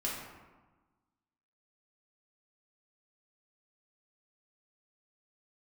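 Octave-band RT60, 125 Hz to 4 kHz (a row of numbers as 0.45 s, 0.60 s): 1.5 s, 1.5 s, 1.2 s, 1.3 s, 1.0 s, 0.70 s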